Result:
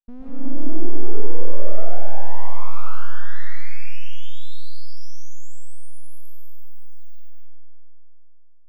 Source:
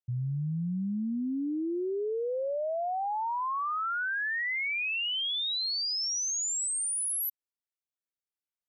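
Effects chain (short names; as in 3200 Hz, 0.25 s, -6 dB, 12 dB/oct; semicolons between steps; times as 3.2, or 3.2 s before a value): tilt -4.5 dB/oct; in parallel at -1.5 dB: compressor, threshold -28 dBFS, peak gain reduction 10.5 dB; on the sum: full-wave rectifier; digital reverb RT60 3 s, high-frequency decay 0.25×, pre-delay 95 ms, DRR -7 dB; gain -16 dB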